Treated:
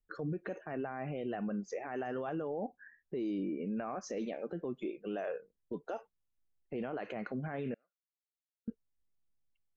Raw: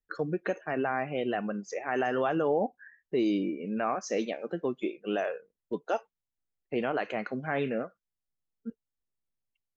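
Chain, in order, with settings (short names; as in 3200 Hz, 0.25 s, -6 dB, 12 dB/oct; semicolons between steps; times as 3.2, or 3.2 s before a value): tilt -2 dB/oct; limiter -27 dBFS, peak gain reduction 11.5 dB; 7.74–8.68 band-pass 4100 Hz, Q 12; gain -2.5 dB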